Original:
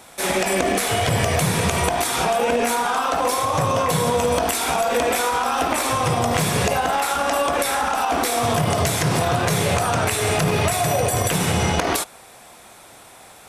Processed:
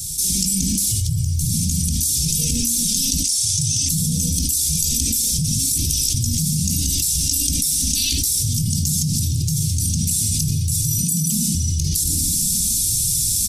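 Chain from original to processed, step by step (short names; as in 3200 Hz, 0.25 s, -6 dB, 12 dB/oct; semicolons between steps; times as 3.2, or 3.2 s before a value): 5.38–6.14 reverse; 7.96–8.18 spectral gain 1200–4800 Hz +12 dB; 10.99–11.55 frequency shift +51 Hz; elliptic band-stop 160–5300 Hz, stop band 70 dB; reverb RT60 1.0 s, pre-delay 3 ms, DRR 11.5 dB; AGC gain up to 15.5 dB; 1.01–1.49 low shelf 84 Hz +10.5 dB; frequency-shifting echo 0.116 s, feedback 35%, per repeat +68 Hz, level -23.5 dB; flange 0.84 Hz, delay 2 ms, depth 2.5 ms, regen -2%; 3.24–3.89 band shelf 4100 Hz +13 dB 2.9 oct; fast leveller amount 100%; gain -14 dB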